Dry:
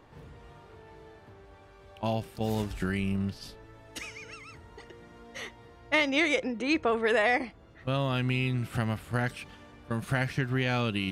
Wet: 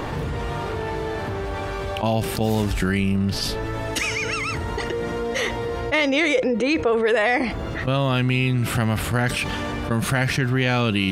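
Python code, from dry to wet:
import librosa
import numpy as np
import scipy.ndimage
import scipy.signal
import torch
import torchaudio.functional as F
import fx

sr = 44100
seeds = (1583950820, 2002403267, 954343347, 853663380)

y = fx.peak_eq(x, sr, hz=490.0, db=10.5, octaves=0.21, at=(4.92, 7.15))
y = fx.env_flatten(y, sr, amount_pct=70)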